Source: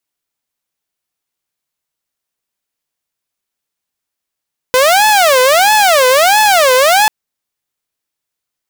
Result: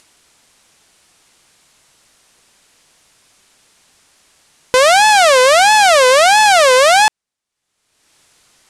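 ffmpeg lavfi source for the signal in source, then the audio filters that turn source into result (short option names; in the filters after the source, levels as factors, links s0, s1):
-f lavfi -i "aevalsrc='0.631*(2*mod((683.5*t-178.5/(2*PI*1.5)*sin(2*PI*1.5*t)),1)-1)':d=2.34:s=44100"
-af "lowpass=f=10000:w=0.5412,lowpass=f=10000:w=1.3066,acompressor=mode=upward:threshold=0.0282:ratio=2.5"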